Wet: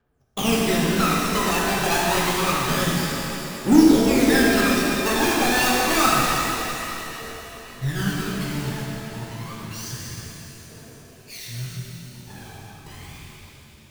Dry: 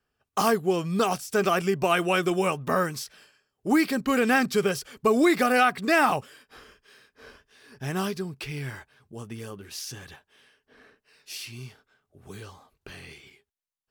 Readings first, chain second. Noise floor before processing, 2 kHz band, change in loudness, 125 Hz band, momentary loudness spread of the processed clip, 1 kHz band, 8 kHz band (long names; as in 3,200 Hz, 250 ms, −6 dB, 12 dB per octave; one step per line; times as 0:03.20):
−83 dBFS, +4.0 dB, +4.5 dB, +7.5 dB, 21 LU, +3.0 dB, +11.0 dB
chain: each half-wave held at its own peak
phase shifter 0.28 Hz, delay 1.3 ms, feedback 78%
reverb with rising layers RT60 3.3 s, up +7 semitones, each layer −8 dB, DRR −4.5 dB
level −9 dB